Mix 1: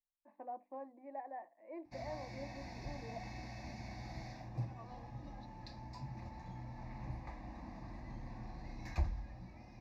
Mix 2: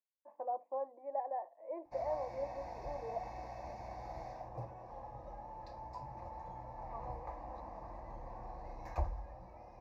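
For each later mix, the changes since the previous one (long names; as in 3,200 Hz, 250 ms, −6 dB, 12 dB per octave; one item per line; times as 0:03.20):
second voice: entry +2.15 s
master: add octave-band graphic EQ 125/250/500/1,000/2,000/4,000/8,000 Hz −6/−11/+11/+7/−6/−9/−4 dB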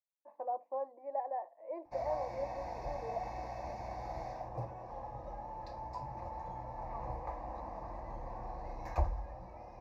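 first voice: remove high-frequency loss of the air 290 metres
background +4.0 dB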